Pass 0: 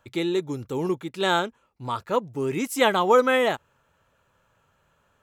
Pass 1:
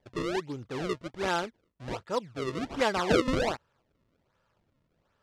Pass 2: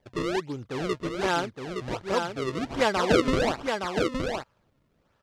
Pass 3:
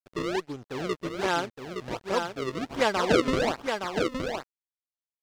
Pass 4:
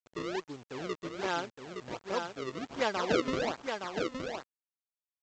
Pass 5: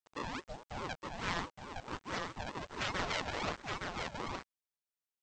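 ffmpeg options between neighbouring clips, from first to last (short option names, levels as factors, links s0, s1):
-af "acrusher=samples=32:mix=1:aa=0.000001:lfo=1:lforange=51.2:lforate=1.3,lowpass=5400,volume=0.473"
-af "aecho=1:1:867:0.562,volume=1.41"
-af "lowshelf=f=100:g=-6.5,aeval=exprs='sgn(val(0))*max(abs(val(0))-0.00531,0)':c=same"
-af "aresample=16000,acrusher=bits=7:mix=0:aa=0.000001,aresample=44100,lowshelf=f=70:g=-9.5,volume=0.501"
-af "afftfilt=real='re*lt(hypot(re,im),0.141)':imag='im*lt(hypot(re,im),0.141)':win_size=1024:overlap=0.75,aeval=exprs='val(0)*sin(2*PI*530*n/s+530*0.4/4.7*sin(2*PI*4.7*n/s))':c=same,volume=1.12"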